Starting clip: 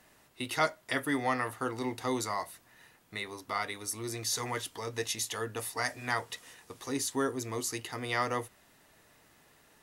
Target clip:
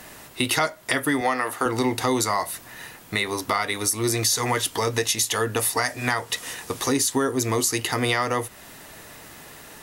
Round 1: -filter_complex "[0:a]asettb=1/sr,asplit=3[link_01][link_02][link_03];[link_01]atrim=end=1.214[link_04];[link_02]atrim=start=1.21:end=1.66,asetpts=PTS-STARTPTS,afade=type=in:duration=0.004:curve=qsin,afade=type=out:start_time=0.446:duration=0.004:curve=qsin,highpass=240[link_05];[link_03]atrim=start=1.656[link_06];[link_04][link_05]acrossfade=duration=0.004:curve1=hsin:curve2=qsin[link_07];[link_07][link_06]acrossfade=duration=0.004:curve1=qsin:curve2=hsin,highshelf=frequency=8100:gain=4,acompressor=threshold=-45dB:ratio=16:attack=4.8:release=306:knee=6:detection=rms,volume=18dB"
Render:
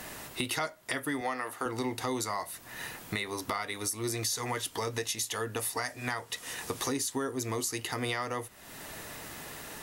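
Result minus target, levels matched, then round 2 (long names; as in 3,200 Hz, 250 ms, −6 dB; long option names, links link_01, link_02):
downward compressor: peak gain reduction +10.5 dB
-filter_complex "[0:a]asettb=1/sr,asplit=3[link_01][link_02][link_03];[link_01]atrim=end=1.214[link_04];[link_02]atrim=start=1.21:end=1.66,asetpts=PTS-STARTPTS,afade=type=in:duration=0.004:curve=qsin,afade=type=out:start_time=0.446:duration=0.004:curve=qsin,highpass=240[link_05];[link_03]atrim=start=1.656[link_06];[link_04][link_05]acrossfade=duration=0.004:curve1=hsin:curve2=qsin[link_07];[link_07][link_06]acrossfade=duration=0.004:curve1=qsin:curve2=hsin,highshelf=frequency=8100:gain=4,acompressor=threshold=-34dB:ratio=16:attack=4.8:release=306:knee=6:detection=rms,volume=18dB"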